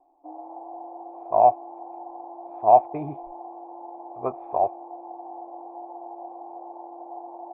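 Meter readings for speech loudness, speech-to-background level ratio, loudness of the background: -22.0 LUFS, 18.0 dB, -40.0 LUFS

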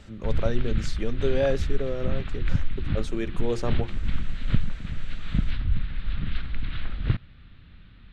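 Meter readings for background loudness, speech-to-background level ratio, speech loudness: -32.0 LUFS, 1.0 dB, -31.0 LUFS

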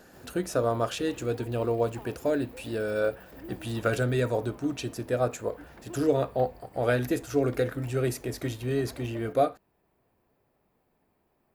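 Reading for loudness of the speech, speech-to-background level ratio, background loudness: -29.5 LUFS, 19.5 dB, -49.0 LUFS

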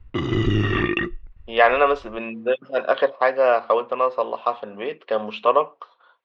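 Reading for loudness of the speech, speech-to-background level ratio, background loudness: -21.5 LUFS, 1.0 dB, -22.5 LUFS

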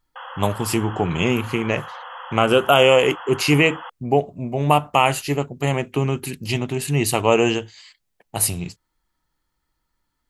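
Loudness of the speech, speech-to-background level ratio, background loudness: -20.0 LUFS, 15.5 dB, -35.5 LUFS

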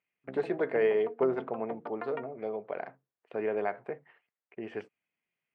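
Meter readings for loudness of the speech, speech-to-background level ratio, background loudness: -33.0 LUFS, 11.5 dB, -44.5 LUFS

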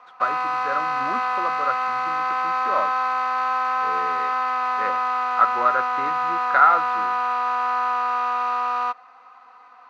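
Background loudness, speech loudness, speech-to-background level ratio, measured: -23.0 LUFS, -24.0 LUFS, -1.0 dB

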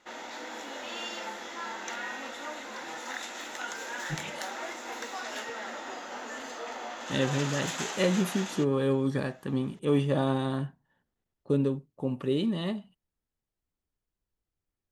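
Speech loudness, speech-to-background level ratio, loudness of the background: -29.5 LUFS, 7.5 dB, -37.0 LUFS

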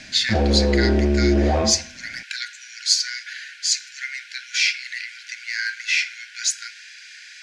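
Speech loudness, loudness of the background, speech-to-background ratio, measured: -24.0 LUFS, -20.0 LUFS, -4.0 dB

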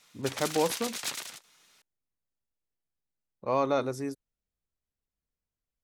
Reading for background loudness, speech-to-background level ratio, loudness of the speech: -35.5 LUFS, 4.5 dB, -31.0 LUFS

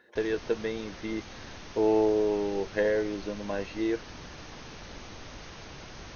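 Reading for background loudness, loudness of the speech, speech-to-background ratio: -44.5 LUFS, -29.5 LUFS, 15.0 dB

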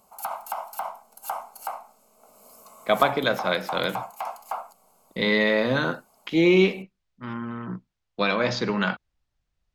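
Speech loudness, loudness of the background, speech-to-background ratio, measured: -23.5 LUFS, -35.0 LUFS, 11.5 dB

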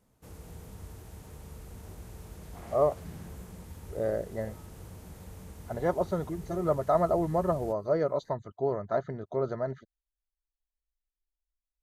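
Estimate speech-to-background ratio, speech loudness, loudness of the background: 16.5 dB, -30.5 LUFS, -47.0 LUFS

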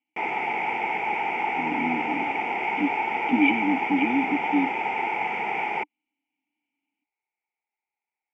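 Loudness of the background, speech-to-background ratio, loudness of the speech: -26.5 LUFS, 0.0 dB, -26.5 LUFS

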